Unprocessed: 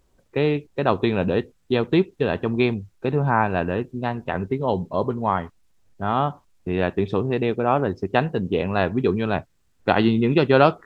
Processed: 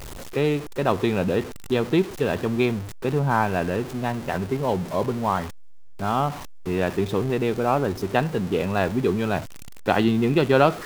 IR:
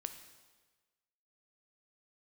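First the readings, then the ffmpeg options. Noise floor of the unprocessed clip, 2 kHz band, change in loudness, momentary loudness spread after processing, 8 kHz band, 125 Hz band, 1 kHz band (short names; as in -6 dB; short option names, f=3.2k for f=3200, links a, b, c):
-64 dBFS, -1.5 dB, -1.0 dB, 7 LU, n/a, -1.0 dB, -1.5 dB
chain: -af "aeval=exprs='val(0)+0.5*0.0398*sgn(val(0))':c=same,volume=-2.5dB"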